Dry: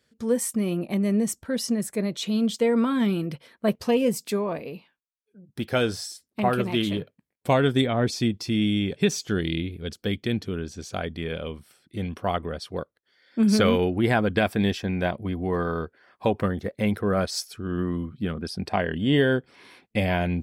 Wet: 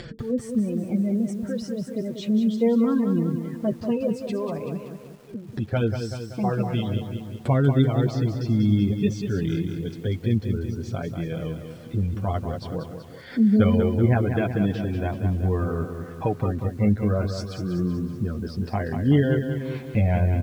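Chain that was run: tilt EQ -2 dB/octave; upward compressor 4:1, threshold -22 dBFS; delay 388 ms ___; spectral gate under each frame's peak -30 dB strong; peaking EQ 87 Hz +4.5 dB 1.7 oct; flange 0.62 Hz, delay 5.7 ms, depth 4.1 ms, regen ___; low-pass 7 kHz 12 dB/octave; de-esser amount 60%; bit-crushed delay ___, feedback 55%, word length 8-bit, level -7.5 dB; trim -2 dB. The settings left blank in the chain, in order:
-17.5 dB, +5%, 190 ms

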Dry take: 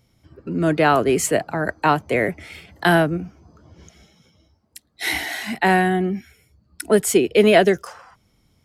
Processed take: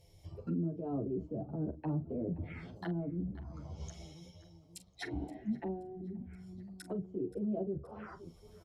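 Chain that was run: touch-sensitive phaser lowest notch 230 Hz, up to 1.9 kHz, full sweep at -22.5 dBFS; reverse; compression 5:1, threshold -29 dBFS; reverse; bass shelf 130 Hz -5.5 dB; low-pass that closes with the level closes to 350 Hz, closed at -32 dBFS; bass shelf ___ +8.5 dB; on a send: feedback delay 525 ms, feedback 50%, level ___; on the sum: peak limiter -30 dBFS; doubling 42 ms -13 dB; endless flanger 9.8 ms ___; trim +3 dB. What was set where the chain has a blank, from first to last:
290 Hz, -22 dB, +0.49 Hz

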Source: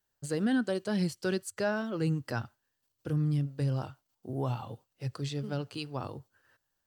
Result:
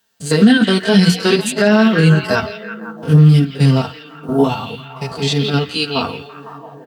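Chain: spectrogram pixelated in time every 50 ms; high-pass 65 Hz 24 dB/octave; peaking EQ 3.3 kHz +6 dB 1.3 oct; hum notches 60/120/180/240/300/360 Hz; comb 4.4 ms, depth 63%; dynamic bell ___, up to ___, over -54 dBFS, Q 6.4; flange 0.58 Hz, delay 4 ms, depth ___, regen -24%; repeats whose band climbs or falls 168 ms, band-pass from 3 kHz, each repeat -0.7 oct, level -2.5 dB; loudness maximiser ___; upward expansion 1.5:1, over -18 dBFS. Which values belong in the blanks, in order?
550 Hz, -5 dB, 8.6 ms, +26 dB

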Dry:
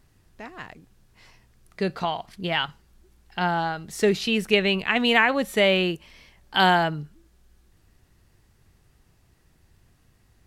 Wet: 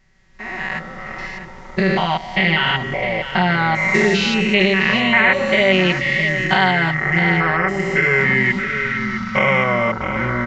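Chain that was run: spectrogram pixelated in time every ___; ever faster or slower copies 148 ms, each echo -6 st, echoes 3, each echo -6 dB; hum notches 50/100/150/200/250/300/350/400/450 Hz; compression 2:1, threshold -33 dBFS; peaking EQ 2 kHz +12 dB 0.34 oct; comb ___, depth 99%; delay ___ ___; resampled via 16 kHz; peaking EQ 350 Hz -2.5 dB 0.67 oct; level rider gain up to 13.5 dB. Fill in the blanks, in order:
200 ms, 5.3 ms, 658 ms, -11 dB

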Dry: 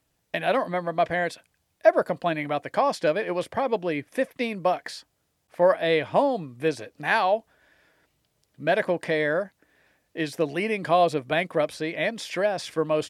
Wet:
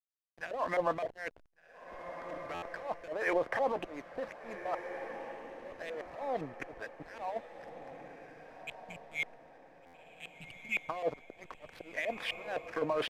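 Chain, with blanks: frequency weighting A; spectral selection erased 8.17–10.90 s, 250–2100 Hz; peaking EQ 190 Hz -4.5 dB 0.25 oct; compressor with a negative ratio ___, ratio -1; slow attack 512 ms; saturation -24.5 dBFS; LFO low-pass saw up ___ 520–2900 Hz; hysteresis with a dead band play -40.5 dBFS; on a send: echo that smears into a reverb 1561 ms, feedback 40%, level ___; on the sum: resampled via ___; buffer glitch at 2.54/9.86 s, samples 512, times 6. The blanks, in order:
-31 dBFS, 3.9 Hz, -9.5 dB, 32 kHz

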